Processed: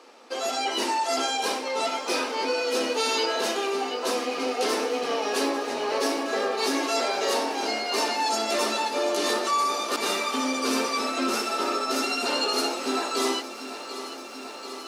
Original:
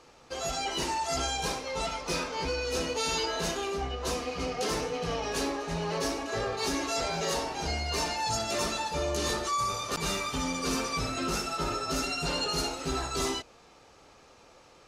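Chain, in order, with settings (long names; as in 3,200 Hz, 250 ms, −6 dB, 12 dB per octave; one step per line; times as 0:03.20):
elliptic high-pass filter 230 Hz, stop band 40 dB
parametric band 6,600 Hz −5 dB 0.32 octaves
feedback echo at a low word length 739 ms, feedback 80%, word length 10 bits, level −13.5 dB
level +6 dB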